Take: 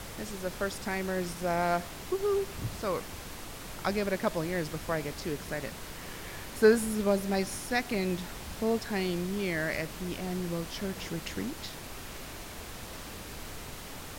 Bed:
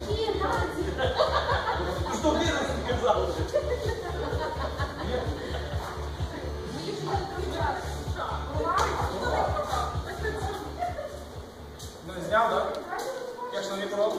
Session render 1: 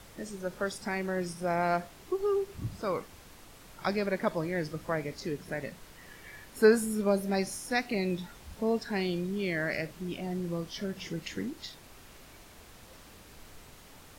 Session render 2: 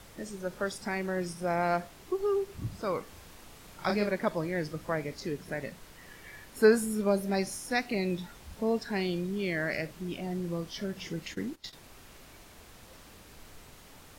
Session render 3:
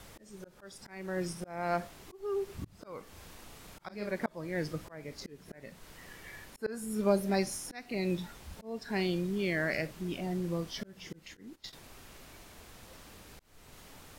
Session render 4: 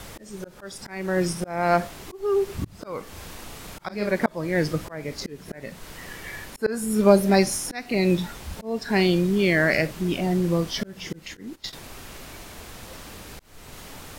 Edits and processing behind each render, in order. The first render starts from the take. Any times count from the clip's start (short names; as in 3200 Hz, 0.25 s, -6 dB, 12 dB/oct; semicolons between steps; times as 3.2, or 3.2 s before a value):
noise print and reduce 10 dB
3.03–4.11 doubler 34 ms -4.5 dB; 11.27–11.73 gate -45 dBFS, range -16 dB
auto swell 0.392 s
gain +11.5 dB